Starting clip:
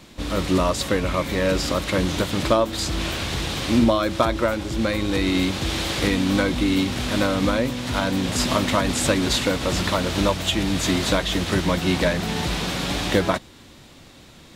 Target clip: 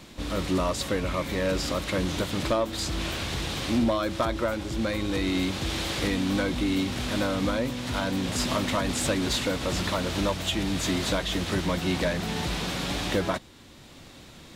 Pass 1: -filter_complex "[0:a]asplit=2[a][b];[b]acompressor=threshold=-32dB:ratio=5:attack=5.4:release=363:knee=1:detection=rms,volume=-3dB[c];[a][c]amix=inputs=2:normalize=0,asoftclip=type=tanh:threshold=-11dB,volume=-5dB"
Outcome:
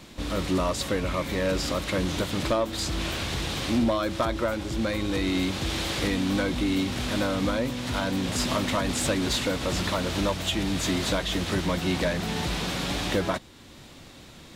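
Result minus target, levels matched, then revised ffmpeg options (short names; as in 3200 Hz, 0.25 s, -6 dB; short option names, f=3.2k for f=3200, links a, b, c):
compressor: peak gain reduction -7.5 dB
-filter_complex "[0:a]asplit=2[a][b];[b]acompressor=threshold=-41.5dB:ratio=5:attack=5.4:release=363:knee=1:detection=rms,volume=-3dB[c];[a][c]amix=inputs=2:normalize=0,asoftclip=type=tanh:threshold=-11dB,volume=-5dB"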